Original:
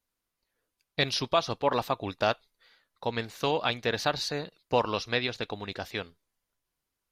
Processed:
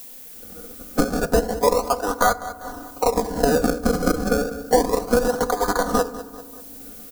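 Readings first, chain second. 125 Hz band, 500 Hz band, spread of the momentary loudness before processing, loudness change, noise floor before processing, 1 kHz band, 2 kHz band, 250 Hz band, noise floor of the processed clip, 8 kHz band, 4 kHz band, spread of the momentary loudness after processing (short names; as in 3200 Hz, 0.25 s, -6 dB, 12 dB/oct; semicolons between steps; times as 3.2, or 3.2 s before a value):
+6.0 dB, +10.0 dB, 9 LU, +8.5 dB, -85 dBFS, +8.5 dB, +4.5 dB, +13.5 dB, -41 dBFS, +14.0 dB, -2.0 dB, 17 LU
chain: HPF 410 Hz 24 dB/oct; treble ducked by the level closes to 2100 Hz, closed at -27 dBFS; dynamic EQ 600 Hz, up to -7 dB, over -38 dBFS, Q 0.7; decimation with a swept rate 32×, swing 100% 0.31 Hz; comb 4.1 ms, depth 80%; harmonic-percussive split harmonic +8 dB; band shelf 2600 Hz -13.5 dB 1.2 oct; AGC gain up to 12 dB; added noise violet -54 dBFS; feedback echo 0.195 s, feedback 29%, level -18 dB; FDN reverb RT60 0.98 s, low-frequency decay 1.45×, high-frequency decay 0.45×, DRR 16.5 dB; three-band squash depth 70%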